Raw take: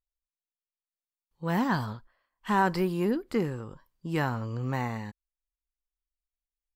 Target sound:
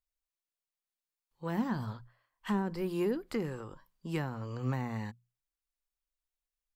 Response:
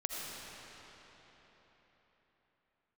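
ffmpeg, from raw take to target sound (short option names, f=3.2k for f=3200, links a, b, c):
-filter_complex "[0:a]bandreject=f=60:t=h:w=6,bandreject=f=120:t=h:w=6,bandreject=f=180:t=h:w=6,acrossover=split=470[a][b];[a]flanger=delay=1.1:depth=8.3:regen=51:speed=0.3:shape=triangular[c];[b]acompressor=threshold=-38dB:ratio=16[d];[c][d]amix=inputs=2:normalize=0"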